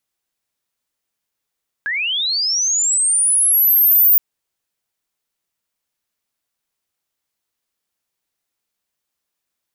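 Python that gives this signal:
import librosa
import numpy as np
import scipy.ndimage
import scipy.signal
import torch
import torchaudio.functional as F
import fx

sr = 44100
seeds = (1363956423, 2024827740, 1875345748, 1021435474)

y = fx.chirp(sr, length_s=2.32, from_hz=1600.0, to_hz=15000.0, law='linear', from_db=-18.5, to_db=-8.0)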